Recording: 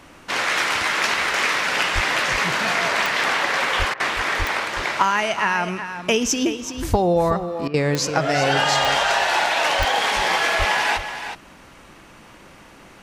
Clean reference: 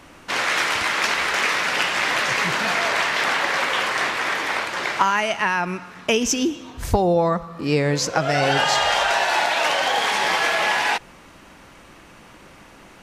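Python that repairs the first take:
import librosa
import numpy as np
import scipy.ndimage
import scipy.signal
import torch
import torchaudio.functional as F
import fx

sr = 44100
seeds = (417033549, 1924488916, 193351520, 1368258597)

y = fx.fix_declick_ar(x, sr, threshold=10.0)
y = fx.fix_deplosive(y, sr, at_s=(1.94, 3.78, 4.38, 9.78, 10.58))
y = fx.fix_interpolate(y, sr, at_s=(3.94, 7.68), length_ms=58.0)
y = fx.fix_echo_inverse(y, sr, delay_ms=372, level_db=-10.0)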